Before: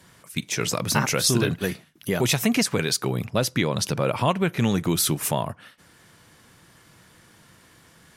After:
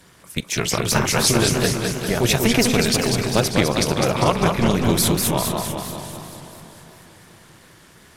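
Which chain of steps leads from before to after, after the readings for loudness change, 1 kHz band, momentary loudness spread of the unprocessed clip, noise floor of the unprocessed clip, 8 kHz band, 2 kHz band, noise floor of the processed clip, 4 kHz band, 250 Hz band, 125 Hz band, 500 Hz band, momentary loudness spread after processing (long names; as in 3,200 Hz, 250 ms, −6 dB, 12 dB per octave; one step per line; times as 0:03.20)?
+4.5 dB, +5.5 dB, 9 LU, −55 dBFS, +4.5 dB, +4.5 dB, −49 dBFS, +5.0 dB, +4.5 dB, +4.0 dB, +5.5 dB, 14 LU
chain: amplitude modulation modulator 230 Hz, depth 65%
delay that swaps between a low-pass and a high-pass 221 ms, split 1,100 Hz, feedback 65%, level −8.5 dB
feedback echo with a swinging delay time 199 ms, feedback 60%, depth 166 cents, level −4.5 dB
level +6 dB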